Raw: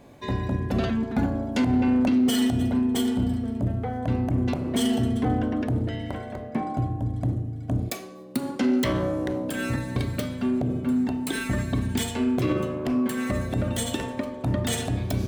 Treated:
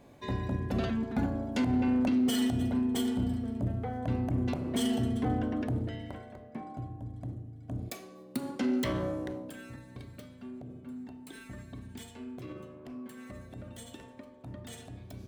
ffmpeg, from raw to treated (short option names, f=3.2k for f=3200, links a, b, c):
-af "volume=0.5dB,afade=t=out:st=5.68:d=0.7:silence=0.421697,afade=t=in:st=7.6:d=0.58:silence=0.473151,afade=t=out:st=9.1:d=0.54:silence=0.251189"